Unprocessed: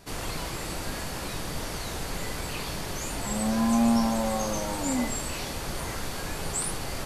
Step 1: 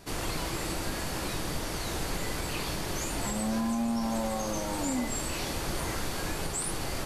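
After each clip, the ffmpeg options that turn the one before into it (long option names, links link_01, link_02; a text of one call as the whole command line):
ffmpeg -i in.wav -af "acontrast=64,equalizer=frequency=330:width_type=o:width=0.24:gain=5,alimiter=limit=-15.5dB:level=0:latency=1:release=244,volume=-6dB" out.wav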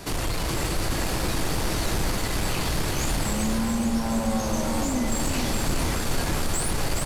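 ffmpeg -i in.wav -filter_complex "[0:a]acrossover=split=150[link_01][link_02];[link_02]acompressor=threshold=-40dB:ratio=2.5[link_03];[link_01][link_03]amix=inputs=2:normalize=0,aeval=exprs='0.0794*sin(PI/2*2.51*val(0)/0.0794)':channel_layout=same,asplit=2[link_04][link_05];[link_05]aecho=0:1:419|838|1257|1676|2095|2514|2933|3352:0.562|0.337|0.202|0.121|0.0729|0.0437|0.0262|0.0157[link_06];[link_04][link_06]amix=inputs=2:normalize=0" out.wav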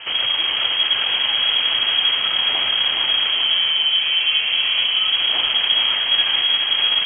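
ffmpeg -i in.wav -af "lowpass=frequency=2800:width_type=q:width=0.5098,lowpass=frequency=2800:width_type=q:width=0.6013,lowpass=frequency=2800:width_type=q:width=0.9,lowpass=frequency=2800:width_type=q:width=2.563,afreqshift=-3300,volume=6dB" out.wav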